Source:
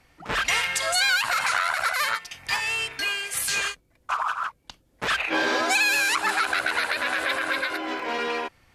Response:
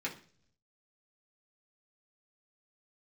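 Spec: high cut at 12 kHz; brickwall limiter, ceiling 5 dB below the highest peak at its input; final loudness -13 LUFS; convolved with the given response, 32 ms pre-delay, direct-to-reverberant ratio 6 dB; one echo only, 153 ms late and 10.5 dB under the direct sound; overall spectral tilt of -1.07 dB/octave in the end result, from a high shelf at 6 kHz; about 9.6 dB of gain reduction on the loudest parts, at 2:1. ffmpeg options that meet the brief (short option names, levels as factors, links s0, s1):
-filter_complex "[0:a]lowpass=12000,highshelf=f=6000:g=-4,acompressor=threshold=0.0141:ratio=2,alimiter=level_in=1.12:limit=0.0631:level=0:latency=1,volume=0.891,aecho=1:1:153:0.299,asplit=2[s0][s1];[1:a]atrim=start_sample=2205,adelay=32[s2];[s1][s2]afir=irnorm=-1:irlink=0,volume=0.335[s3];[s0][s3]amix=inputs=2:normalize=0,volume=10"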